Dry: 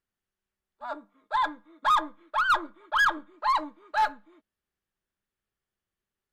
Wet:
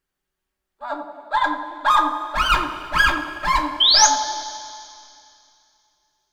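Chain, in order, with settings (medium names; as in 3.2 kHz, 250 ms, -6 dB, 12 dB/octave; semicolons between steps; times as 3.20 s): 2.35–4.02 s: comb filter that takes the minimum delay 3 ms; 3.80–4.07 s: painted sound rise 3–6.9 kHz -21 dBFS; on a send: band-passed feedback delay 89 ms, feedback 68%, band-pass 570 Hz, level -7 dB; on the sum: two-slope reverb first 0.25 s, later 2.7 s, from -17 dB, DRR 3 dB; trim +5.5 dB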